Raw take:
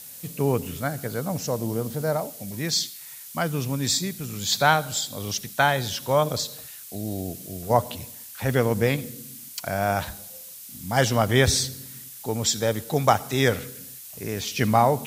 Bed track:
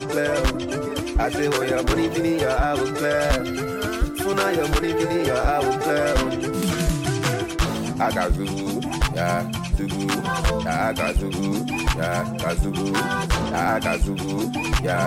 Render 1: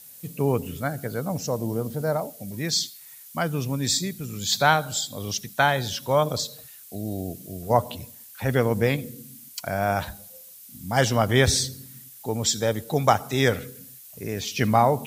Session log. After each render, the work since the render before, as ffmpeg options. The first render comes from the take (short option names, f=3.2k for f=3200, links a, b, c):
-af "afftdn=nr=7:nf=-42"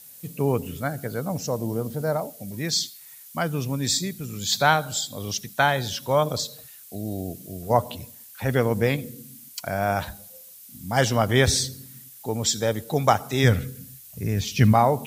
-filter_complex "[0:a]asplit=3[a][b][c];[a]afade=t=out:st=13.43:d=0.02[d];[b]asubboost=boost=3.5:cutoff=210,afade=t=in:st=13.43:d=0.02,afade=t=out:st=14.72:d=0.02[e];[c]afade=t=in:st=14.72:d=0.02[f];[d][e][f]amix=inputs=3:normalize=0"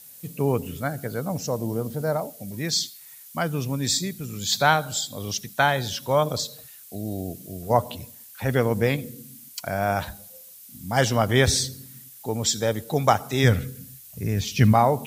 -af anull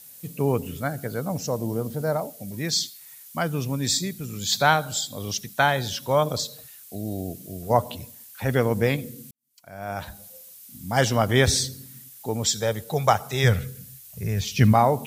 -filter_complex "[0:a]asettb=1/sr,asplit=3[a][b][c];[a]atrim=end=12.454[d];[b]atrim=start=12.45:end=14.58,asetpts=PTS-STARTPTS,afade=t=in:d=0.004:c=qsin,afade=t=out:st=2.126:d=0.004:c=qsin,equalizer=f=280:t=o:w=0.43:g=-12.5[e];[c]atrim=start=14.576[f];[d][e]acrossfade=d=0.004:c1=hsin:c2=qsin[g];[g][f]acrossfade=d=0.004:c1=qsin:c2=hsin,asplit=2[h][i];[h]atrim=end=9.31,asetpts=PTS-STARTPTS,afade=t=out:st=9.306:d=0.004:c=hsin[j];[i]atrim=start=9.31,asetpts=PTS-STARTPTS,afade=t=in:d=0.94:c=qua[k];[j][k]concat=n=2:v=0:a=1"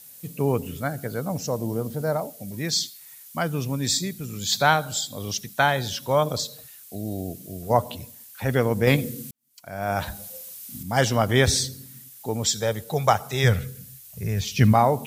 -filter_complex "[0:a]asettb=1/sr,asplit=3[a][b][c];[a]atrim=end=8.874[d];[b]atrim=start=8.87:end=10.83,asetpts=PTS-STARTPTS,afade=t=in:d=0.004:c=qsin,afade=t=out:st=1.956:d=0.004:c=qsin,acontrast=52[e];[c]atrim=start=10.826[f];[d][e]acrossfade=d=0.004:c1=hsin:c2=qsin[g];[g][f]acrossfade=d=0.004:c1=qsin:c2=hsin"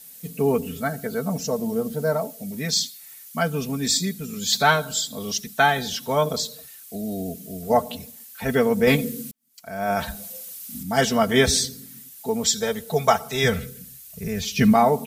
-af "bandreject=f=980:w=10,aecho=1:1:4.5:0.8"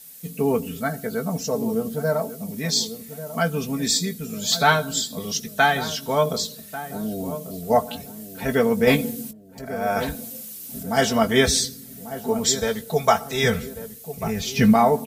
-filter_complex "[0:a]asplit=2[a][b];[b]adelay=18,volume=-11dB[c];[a][c]amix=inputs=2:normalize=0,asplit=2[d][e];[e]adelay=1142,lowpass=f=810:p=1,volume=-11dB,asplit=2[f][g];[g]adelay=1142,lowpass=f=810:p=1,volume=0.45,asplit=2[h][i];[i]adelay=1142,lowpass=f=810:p=1,volume=0.45,asplit=2[j][k];[k]adelay=1142,lowpass=f=810:p=1,volume=0.45,asplit=2[l][m];[m]adelay=1142,lowpass=f=810:p=1,volume=0.45[n];[d][f][h][j][l][n]amix=inputs=6:normalize=0"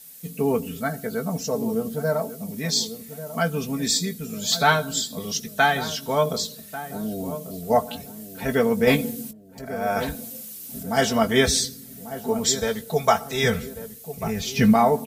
-af "volume=-1dB"